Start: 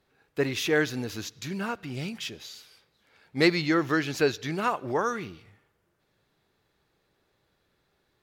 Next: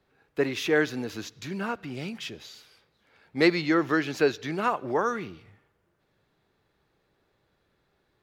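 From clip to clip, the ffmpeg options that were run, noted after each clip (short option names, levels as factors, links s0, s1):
-filter_complex "[0:a]highshelf=f=3800:g=-7.5,acrossover=split=170|1100|3000[s0][s1][s2][s3];[s0]acompressor=threshold=0.00398:ratio=6[s4];[s4][s1][s2][s3]amix=inputs=4:normalize=0,volume=1.19"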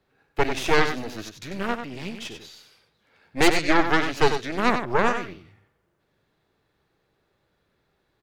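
-af "aeval=exprs='0.376*(cos(1*acos(clip(val(0)/0.376,-1,1)))-cos(1*PI/2))+0.133*(cos(6*acos(clip(val(0)/0.376,-1,1)))-cos(6*PI/2))':c=same,aecho=1:1:94:0.398"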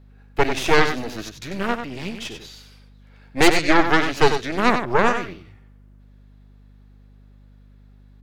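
-af "aeval=exprs='val(0)+0.00282*(sin(2*PI*50*n/s)+sin(2*PI*2*50*n/s)/2+sin(2*PI*3*50*n/s)/3+sin(2*PI*4*50*n/s)/4+sin(2*PI*5*50*n/s)/5)':c=same,volume=1.5"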